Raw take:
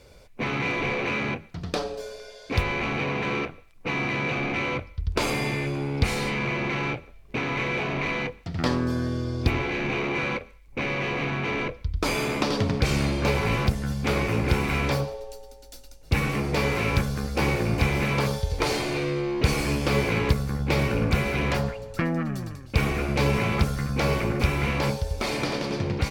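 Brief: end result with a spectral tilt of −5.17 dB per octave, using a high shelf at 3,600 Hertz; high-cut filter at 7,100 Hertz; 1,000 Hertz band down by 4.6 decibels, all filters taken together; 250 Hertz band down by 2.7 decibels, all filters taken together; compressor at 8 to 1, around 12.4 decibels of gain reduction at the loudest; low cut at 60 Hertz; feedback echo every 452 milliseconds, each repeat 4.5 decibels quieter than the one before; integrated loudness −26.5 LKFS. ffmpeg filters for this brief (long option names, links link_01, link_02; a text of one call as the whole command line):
ffmpeg -i in.wav -af "highpass=60,lowpass=7100,equalizer=frequency=250:width_type=o:gain=-3.5,equalizer=frequency=1000:width_type=o:gain=-5,highshelf=frequency=3600:gain=-7.5,acompressor=threshold=-32dB:ratio=8,aecho=1:1:452|904|1356|1808|2260|2712|3164|3616|4068:0.596|0.357|0.214|0.129|0.0772|0.0463|0.0278|0.0167|0.01,volume=8dB" out.wav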